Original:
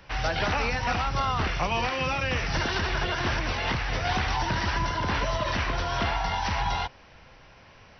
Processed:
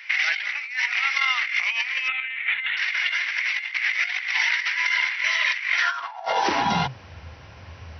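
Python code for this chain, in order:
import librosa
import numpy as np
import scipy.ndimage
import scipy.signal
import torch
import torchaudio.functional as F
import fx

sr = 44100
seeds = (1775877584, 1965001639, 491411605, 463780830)

y = fx.filter_sweep_highpass(x, sr, from_hz=2100.0, to_hz=82.0, start_s=5.77, end_s=7.09, q=7.7)
y = fx.over_compress(y, sr, threshold_db=-26.0, ratio=-0.5)
y = fx.lpc_monotone(y, sr, seeds[0], pitch_hz=260.0, order=16, at=(2.08, 2.77))
y = y * 10.0 ** (2.0 / 20.0)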